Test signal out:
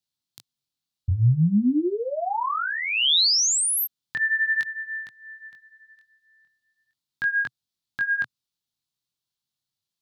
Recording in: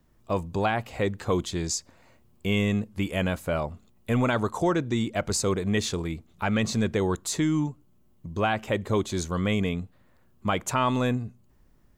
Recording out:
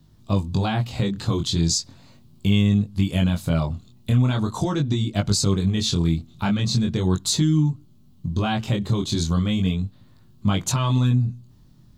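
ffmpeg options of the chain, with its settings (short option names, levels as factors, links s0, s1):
-af "equalizer=f=125:t=o:w=1:g=12,equalizer=f=250:t=o:w=1:g=4,equalizer=f=500:t=o:w=1:g=-6,equalizer=f=2000:t=o:w=1:g=-7,equalizer=f=4000:t=o:w=1:g=11,acompressor=threshold=0.0794:ratio=6,flanger=delay=19.5:depth=5.4:speed=0.39,volume=2.37"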